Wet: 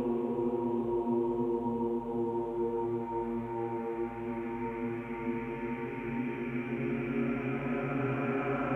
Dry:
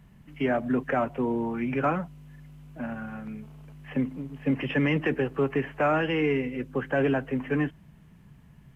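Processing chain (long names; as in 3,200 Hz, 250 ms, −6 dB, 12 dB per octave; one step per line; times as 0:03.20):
backwards echo 37 ms −4 dB
extreme stretch with random phases 17×, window 0.50 s, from 0:01.24
level −6 dB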